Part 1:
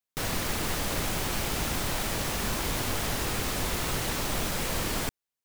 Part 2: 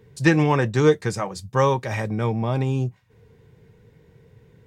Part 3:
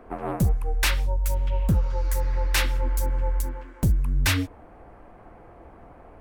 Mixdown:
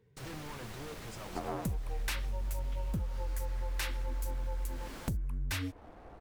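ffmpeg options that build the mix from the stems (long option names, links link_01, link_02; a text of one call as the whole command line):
ffmpeg -i stem1.wav -i stem2.wav -i stem3.wav -filter_complex "[0:a]highshelf=frequency=7000:gain=-7,volume=-16dB[link_01];[1:a]asoftclip=type=tanh:threshold=-28.5dB,volume=-15.5dB[link_02];[2:a]aeval=exprs='sgn(val(0))*max(abs(val(0))-0.00119,0)':channel_layout=same,adelay=1250,volume=-2.5dB[link_03];[link_01][link_02][link_03]amix=inputs=3:normalize=0,acompressor=threshold=-33dB:ratio=5" out.wav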